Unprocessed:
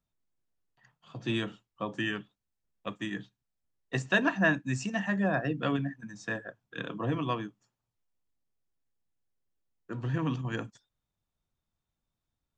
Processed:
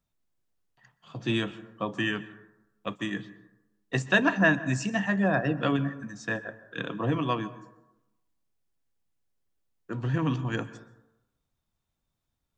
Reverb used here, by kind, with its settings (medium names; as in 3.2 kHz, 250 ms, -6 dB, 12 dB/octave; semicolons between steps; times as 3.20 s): plate-style reverb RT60 0.93 s, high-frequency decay 0.35×, pre-delay 115 ms, DRR 16 dB; trim +3.5 dB